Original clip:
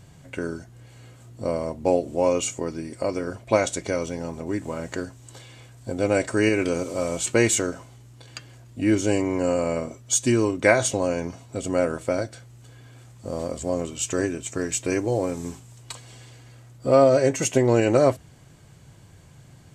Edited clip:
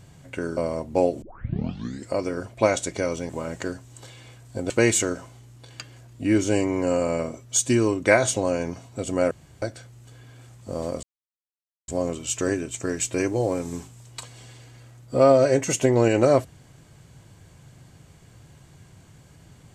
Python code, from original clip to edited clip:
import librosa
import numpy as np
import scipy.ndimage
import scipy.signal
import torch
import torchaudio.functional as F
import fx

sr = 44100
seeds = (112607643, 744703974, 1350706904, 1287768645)

y = fx.edit(x, sr, fx.cut(start_s=0.57, length_s=0.9),
    fx.tape_start(start_s=2.12, length_s=0.88),
    fx.cut(start_s=4.19, length_s=0.42),
    fx.cut(start_s=6.02, length_s=1.25),
    fx.room_tone_fill(start_s=11.88, length_s=0.31),
    fx.insert_silence(at_s=13.6, length_s=0.85), tone=tone)